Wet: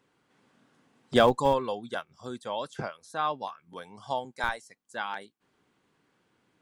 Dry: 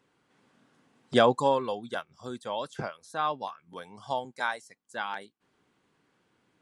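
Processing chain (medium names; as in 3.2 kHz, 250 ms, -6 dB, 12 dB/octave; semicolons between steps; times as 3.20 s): in parallel at -4.5 dB: Schmitt trigger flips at -17 dBFS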